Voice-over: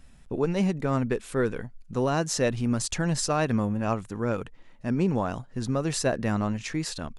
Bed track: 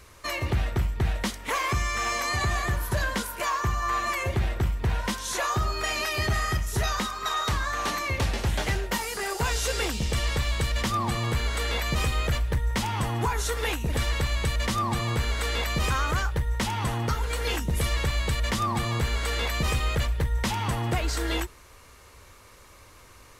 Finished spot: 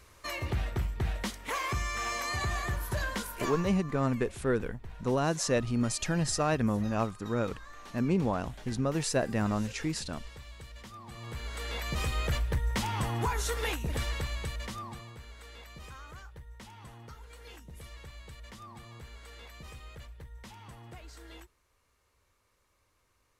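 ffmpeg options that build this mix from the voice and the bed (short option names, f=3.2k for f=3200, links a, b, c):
-filter_complex "[0:a]adelay=3100,volume=-3dB[a];[1:a]volume=11dB,afade=t=out:st=3.37:d=0.45:silence=0.177828,afade=t=in:st=11.05:d=1.32:silence=0.141254,afade=t=out:st=13.59:d=1.54:silence=0.133352[b];[a][b]amix=inputs=2:normalize=0"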